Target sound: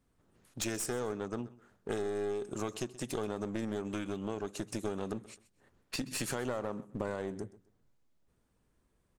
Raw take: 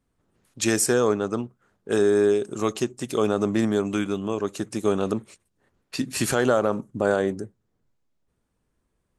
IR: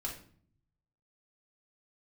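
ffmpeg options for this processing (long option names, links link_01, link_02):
-filter_complex "[0:a]acompressor=threshold=-33dB:ratio=5,aeval=exprs='clip(val(0),-1,0.0168)':channel_layout=same,asplit=2[link_01][link_02];[link_02]aecho=0:1:129|258:0.112|0.0314[link_03];[link_01][link_03]amix=inputs=2:normalize=0"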